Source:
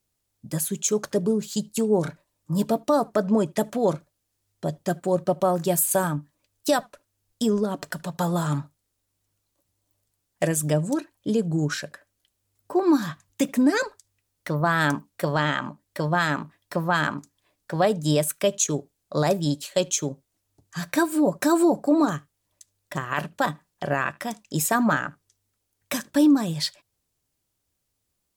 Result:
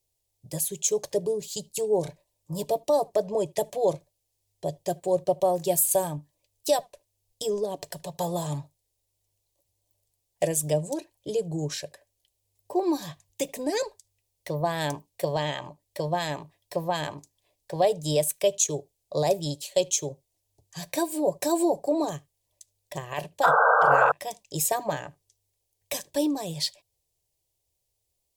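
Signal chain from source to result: fixed phaser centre 570 Hz, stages 4; painted sound noise, 23.43–24.12, 440–1600 Hz -19 dBFS

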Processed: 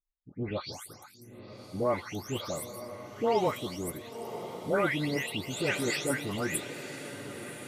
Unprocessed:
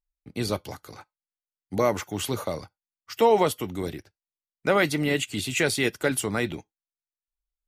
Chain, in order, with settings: spectral delay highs late, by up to 0.374 s; diffused feedback echo 1.029 s, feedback 58%, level -11 dB; gain -5 dB

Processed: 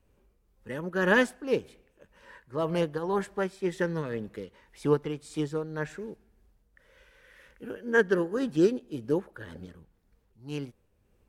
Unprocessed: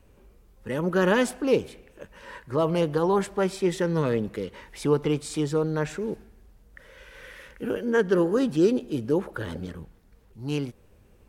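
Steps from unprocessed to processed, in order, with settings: dynamic EQ 1700 Hz, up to +7 dB, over -50 dBFS, Q 4.2; tremolo triangle 1.9 Hz, depth 45%; upward expander 1.5:1, over -36 dBFS

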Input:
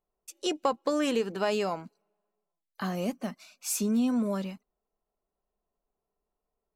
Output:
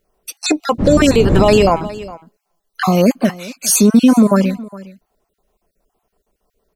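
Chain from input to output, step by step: random spectral dropouts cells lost 33%; 0.78–1.74 wind noise 220 Hz -33 dBFS; echo 0.412 s -20 dB; maximiser +21 dB; gain -1 dB

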